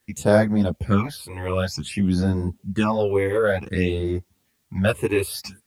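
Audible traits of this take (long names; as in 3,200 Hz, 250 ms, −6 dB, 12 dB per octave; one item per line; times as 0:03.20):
phaser sweep stages 8, 0.54 Hz, lowest notch 190–2,800 Hz
a quantiser's noise floor 12 bits, dither triangular
a shimmering, thickened sound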